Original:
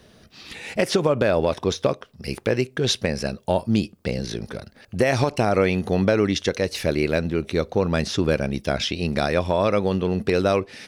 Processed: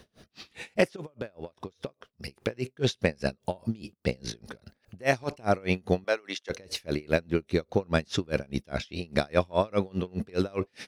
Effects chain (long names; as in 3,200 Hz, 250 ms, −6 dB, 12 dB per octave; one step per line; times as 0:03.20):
0:00.96–0:02.36: downward compressor 10 to 1, threshold −30 dBFS, peak gain reduction 15.5 dB
0:06.04–0:06.50: high-pass filter 620 Hz 12 dB per octave
tremolo with a sine in dB 4.9 Hz, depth 31 dB